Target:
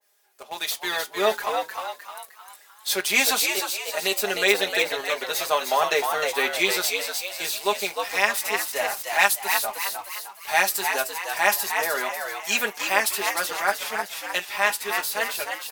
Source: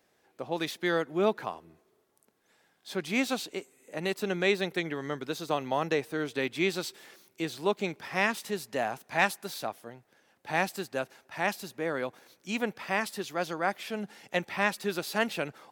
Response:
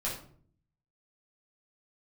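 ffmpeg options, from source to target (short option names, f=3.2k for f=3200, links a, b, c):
-filter_complex "[0:a]highpass=600,aemphasis=mode=production:type=75kf,aecho=1:1:4.9:0.87,dynaudnorm=f=170:g=17:m=13dB,asplit=2[a][b];[b]acrusher=bits=4:mix=0:aa=0.000001,volume=-6dB[c];[a][c]amix=inputs=2:normalize=0,flanger=delay=9.6:depth=2:regen=-67:speed=0.23:shape=sinusoidal,asplit=6[d][e][f][g][h][i];[e]adelay=307,afreqshift=87,volume=-5dB[j];[f]adelay=614,afreqshift=174,volume=-12.5dB[k];[g]adelay=921,afreqshift=261,volume=-20.1dB[l];[h]adelay=1228,afreqshift=348,volume=-27.6dB[m];[i]adelay=1535,afreqshift=435,volume=-35.1dB[n];[d][j][k][l][m][n]amix=inputs=6:normalize=0,adynamicequalizer=threshold=0.0251:dfrequency=1900:dqfactor=0.7:tfrequency=1900:tqfactor=0.7:attack=5:release=100:ratio=0.375:range=2.5:mode=cutabove:tftype=highshelf"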